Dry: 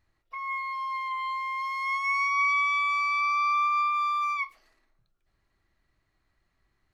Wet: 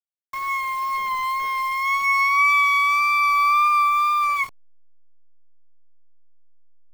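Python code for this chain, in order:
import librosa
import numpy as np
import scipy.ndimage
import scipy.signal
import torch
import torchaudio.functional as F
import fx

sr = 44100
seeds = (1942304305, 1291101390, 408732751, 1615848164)

y = fx.delta_hold(x, sr, step_db=-42.0)
y = fx.wow_flutter(y, sr, seeds[0], rate_hz=2.1, depth_cents=21.0)
y = y * 10.0 ** (7.5 / 20.0)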